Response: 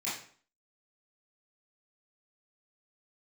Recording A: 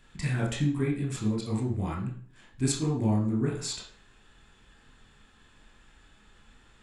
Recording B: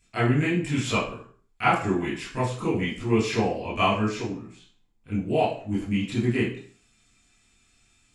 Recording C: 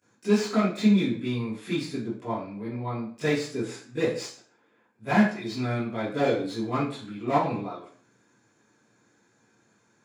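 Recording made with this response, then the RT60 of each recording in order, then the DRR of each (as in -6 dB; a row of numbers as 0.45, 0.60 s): B; 0.50, 0.50, 0.50 s; -1.5, -11.5, -18.0 dB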